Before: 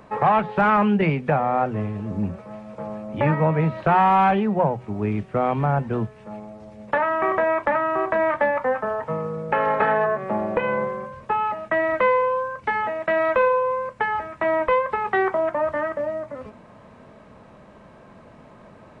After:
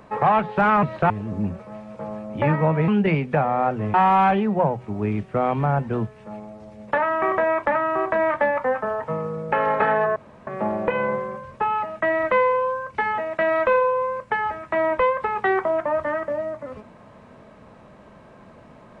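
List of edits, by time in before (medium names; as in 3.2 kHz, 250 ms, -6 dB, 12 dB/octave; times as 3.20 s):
0.83–1.89 s: swap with 3.67–3.94 s
10.16 s: insert room tone 0.31 s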